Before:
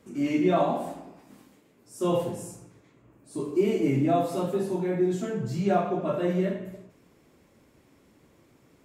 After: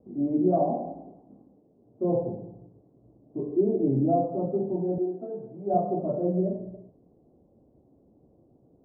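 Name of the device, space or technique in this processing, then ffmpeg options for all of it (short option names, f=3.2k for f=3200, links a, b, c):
under water: -filter_complex "[0:a]lowpass=f=630:w=0.5412,lowpass=f=630:w=1.3066,equalizer=f=740:t=o:w=0.27:g=8,bandreject=f=1.7k:w=20,asettb=1/sr,asplit=3[a][b][c];[a]atrim=end=4.984[d];[b]atrim=start=4.98:end=5.74,asetpts=PTS-STARTPTS,afade=t=in:d=0.004:c=qsin,afade=t=out:st=0.756:d=0.004:c=qsin,highpass=400[e];[c]atrim=start=5.736[f];[d][e]acrossfade=d=0.004:c1=hsin:c2=qsin[g];[g][f]acrossfade=d=0.004:c1=qsin:c2=hsin"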